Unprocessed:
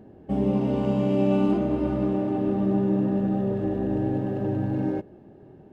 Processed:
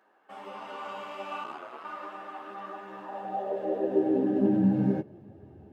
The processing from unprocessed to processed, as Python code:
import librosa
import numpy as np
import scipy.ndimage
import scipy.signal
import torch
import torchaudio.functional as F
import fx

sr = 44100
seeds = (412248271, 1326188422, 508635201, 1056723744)

y = fx.chorus_voices(x, sr, voices=4, hz=1.4, base_ms=12, depth_ms=3.0, mix_pct=45)
y = fx.ring_mod(y, sr, carrier_hz=fx.line((1.43, 26.0), (1.83, 87.0)), at=(1.43, 1.83), fade=0.02)
y = fx.filter_sweep_highpass(y, sr, from_hz=1200.0, to_hz=66.0, start_s=2.91, end_s=5.72, q=3.0)